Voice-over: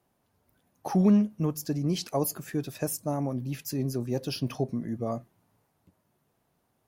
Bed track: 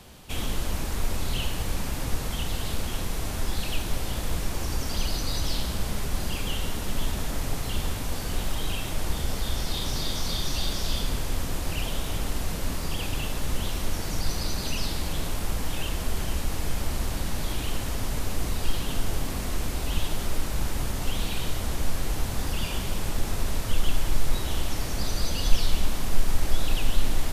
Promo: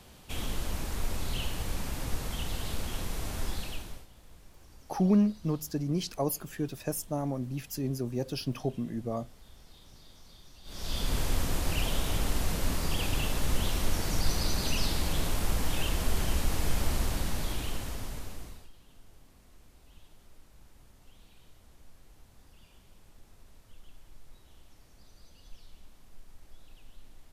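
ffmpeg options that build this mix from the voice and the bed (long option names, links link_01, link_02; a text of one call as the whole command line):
ffmpeg -i stem1.wav -i stem2.wav -filter_complex "[0:a]adelay=4050,volume=-2.5dB[link_01];[1:a]volume=20.5dB,afade=type=out:start_time=3.46:duration=0.61:silence=0.0891251,afade=type=in:start_time=10.64:duration=0.56:silence=0.0530884,afade=type=out:start_time=16.9:duration=1.79:silence=0.0375837[link_02];[link_01][link_02]amix=inputs=2:normalize=0" out.wav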